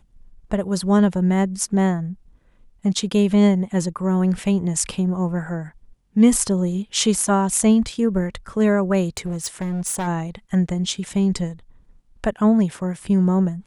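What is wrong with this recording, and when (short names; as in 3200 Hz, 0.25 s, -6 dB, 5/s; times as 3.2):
9.17–10.08 clipped -21.5 dBFS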